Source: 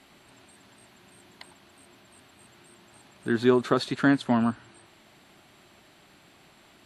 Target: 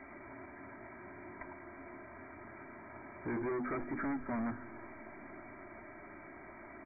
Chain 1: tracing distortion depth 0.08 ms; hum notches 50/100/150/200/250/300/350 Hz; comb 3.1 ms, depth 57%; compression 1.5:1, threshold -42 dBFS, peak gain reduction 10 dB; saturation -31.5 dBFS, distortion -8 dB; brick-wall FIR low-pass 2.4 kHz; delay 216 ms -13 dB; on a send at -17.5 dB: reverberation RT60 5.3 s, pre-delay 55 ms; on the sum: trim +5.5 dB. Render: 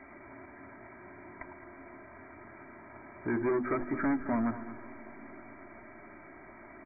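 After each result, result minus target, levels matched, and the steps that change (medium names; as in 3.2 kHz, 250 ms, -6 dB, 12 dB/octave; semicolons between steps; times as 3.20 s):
saturation: distortion -5 dB; echo-to-direct +5 dB
change: saturation -40 dBFS, distortion -3 dB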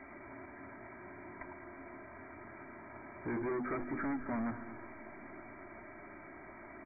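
echo-to-direct +5 dB
change: delay 216 ms -24.5 dB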